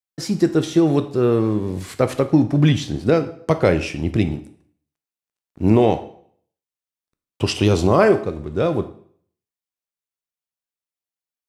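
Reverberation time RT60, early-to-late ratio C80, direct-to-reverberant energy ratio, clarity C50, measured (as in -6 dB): 0.55 s, 17.0 dB, 9.5 dB, 13.5 dB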